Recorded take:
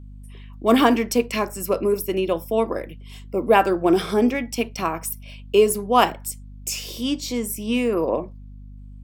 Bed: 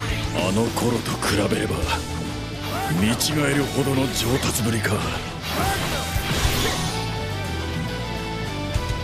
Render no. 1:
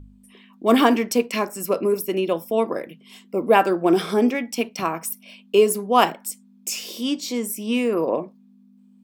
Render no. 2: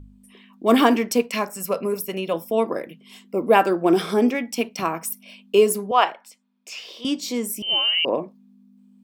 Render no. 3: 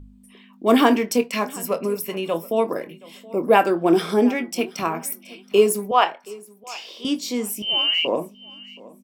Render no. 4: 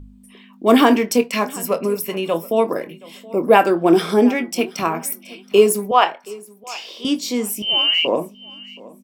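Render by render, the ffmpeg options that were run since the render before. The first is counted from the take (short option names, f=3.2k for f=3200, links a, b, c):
-af "bandreject=f=50:t=h:w=4,bandreject=f=100:t=h:w=4,bandreject=f=150:t=h:w=4"
-filter_complex "[0:a]asettb=1/sr,asplit=3[a][b][c];[a]atrim=end=1.214[d];[b]atrim=start=1.21:end=2.34,asetpts=PTS-STARTPTS,afade=t=in:d=0.004:c=qsin,afade=t=out:st=1.126:d=0.004:c=qsin,equalizer=f=330:t=o:w=0.36:g=-15[e];[c]atrim=start=2.336[f];[d][e]acrossfade=d=0.004:c1=hsin:c2=qsin[g];[g][f]acrossfade=d=0.004:c1=qsin:c2=hsin,asettb=1/sr,asplit=3[h][i][j];[h]atrim=end=5.914[k];[i]atrim=start=5.91:end=7.05,asetpts=PTS-STARTPTS,afade=t=in:d=0.004:c=qsin,afade=t=out:st=1.136:d=0.004:c=qsin,acrossover=split=480 4500:gain=0.0794 1 0.0794[l][m][n];[l][m][n]amix=inputs=3:normalize=0[o];[j]atrim=start=7.046[p];[k][o]acrossfade=d=0.004:c1=hsin:c2=qsin[q];[q][p]acrossfade=d=0.004:c1=qsin:c2=hsin,asettb=1/sr,asplit=3[r][s][t];[r]atrim=end=7.624[u];[s]atrim=start=7.62:end=8.05,asetpts=PTS-STARTPTS,afade=t=in:d=0.004:c=qsin,afade=t=out:st=0.426:d=0.004:c=qsin,lowpass=f=2.8k:t=q:w=0.5098,lowpass=f=2.8k:t=q:w=0.6013,lowpass=f=2.8k:t=q:w=0.9,lowpass=f=2.8k:t=q:w=2.563,afreqshift=-3300[v];[t]atrim=start=8.046[w];[u][v]acrossfade=d=0.004:c1=hsin:c2=qsin[x];[x][w]acrossfade=d=0.004:c1=qsin:c2=hsin"
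-filter_complex "[0:a]asplit=2[a][b];[b]adelay=24,volume=-12dB[c];[a][c]amix=inputs=2:normalize=0,aecho=1:1:724|1448:0.0841|0.0202"
-af "volume=3.5dB,alimiter=limit=-1dB:level=0:latency=1"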